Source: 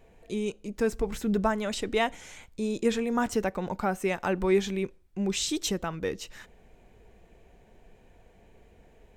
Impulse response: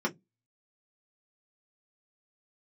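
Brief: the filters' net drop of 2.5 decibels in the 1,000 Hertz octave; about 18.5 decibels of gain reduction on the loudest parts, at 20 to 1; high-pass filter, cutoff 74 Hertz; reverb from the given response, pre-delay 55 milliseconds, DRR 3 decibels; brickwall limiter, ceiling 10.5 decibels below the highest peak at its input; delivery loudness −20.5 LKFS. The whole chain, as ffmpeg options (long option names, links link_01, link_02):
-filter_complex "[0:a]highpass=74,equalizer=frequency=1000:width_type=o:gain=-3.5,acompressor=threshold=-38dB:ratio=20,alimiter=level_in=14dB:limit=-24dB:level=0:latency=1,volume=-14dB,asplit=2[link_01][link_02];[1:a]atrim=start_sample=2205,adelay=55[link_03];[link_02][link_03]afir=irnorm=-1:irlink=0,volume=-11dB[link_04];[link_01][link_04]amix=inputs=2:normalize=0,volume=22.5dB"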